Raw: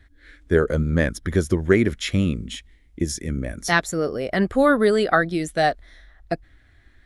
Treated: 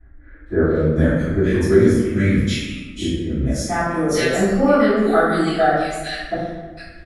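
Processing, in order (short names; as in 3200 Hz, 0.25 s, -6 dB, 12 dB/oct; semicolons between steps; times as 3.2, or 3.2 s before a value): in parallel at -0.5 dB: compressor, threshold -32 dBFS, peak gain reduction 19 dB; on the sum: bands offset in time lows, highs 0.46 s, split 1600 Hz; reverb RT60 1.3 s, pre-delay 3 ms, DRR -16 dB; gain -16.5 dB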